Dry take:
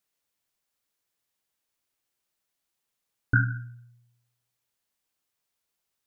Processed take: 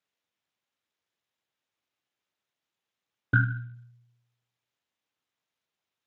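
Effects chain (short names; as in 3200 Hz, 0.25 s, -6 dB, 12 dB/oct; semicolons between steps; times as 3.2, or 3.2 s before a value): Speex 36 kbps 32000 Hz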